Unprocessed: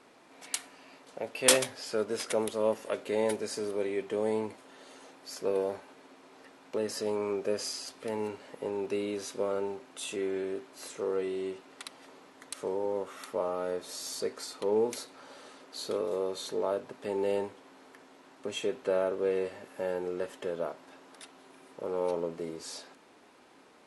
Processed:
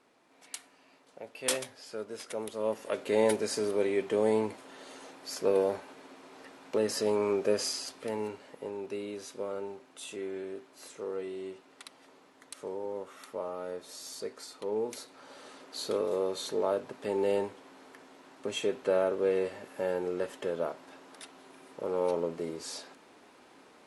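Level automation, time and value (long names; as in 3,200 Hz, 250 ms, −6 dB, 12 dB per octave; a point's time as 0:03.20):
0:02.31 −8 dB
0:03.17 +3.5 dB
0:07.61 +3.5 dB
0:08.80 −5 dB
0:14.83 −5 dB
0:15.56 +1.5 dB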